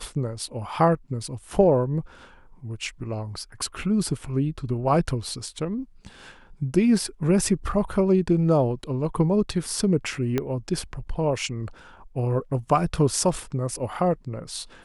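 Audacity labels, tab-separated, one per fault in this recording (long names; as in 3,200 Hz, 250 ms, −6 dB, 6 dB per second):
10.380000	10.380000	click −11 dBFS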